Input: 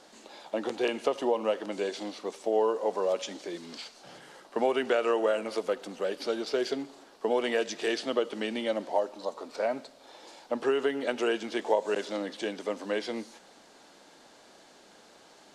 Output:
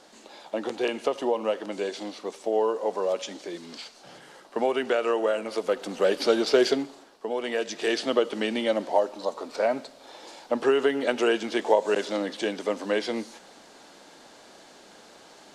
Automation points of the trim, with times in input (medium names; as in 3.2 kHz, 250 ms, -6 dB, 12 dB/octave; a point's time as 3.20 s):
5.51 s +1.5 dB
6.07 s +9 dB
6.67 s +9 dB
7.26 s -3.5 dB
8.01 s +5 dB